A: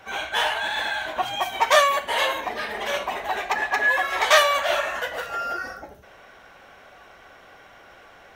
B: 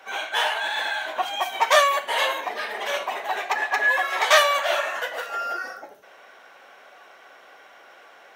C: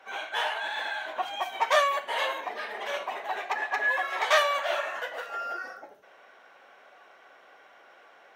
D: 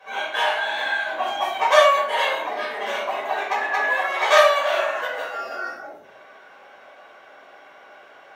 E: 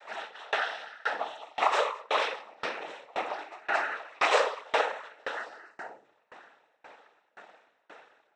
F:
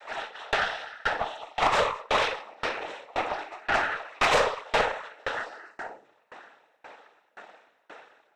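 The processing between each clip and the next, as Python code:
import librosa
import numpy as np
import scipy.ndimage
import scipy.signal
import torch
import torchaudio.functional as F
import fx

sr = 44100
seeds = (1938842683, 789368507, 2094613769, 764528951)

y1 = scipy.signal.sosfilt(scipy.signal.butter(2, 380.0, 'highpass', fs=sr, output='sos'), x)
y2 = fx.high_shelf(y1, sr, hz=4700.0, db=-8.0)
y2 = y2 * 10.0 ** (-5.0 / 20.0)
y3 = fx.room_shoebox(y2, sr, seeds[0], volume_m3=440.0, walls='furnished', distance_m=5.5)
y3 = y3 * 10.0 ** (-1.0 / 20.0)
y4 = fx.noise_vocoder(y3, sr, seeds[1], bands=12)
y4 = fx.tremolo_decay(y4, sr, direction='decaying', hz=1.9, depth_db=30)
y5 = fx.tube_stage(y4, sr, drive_db=22.0, bias=0.55)
y5 = y5 * 10.0 ** (6.5 / 20.0)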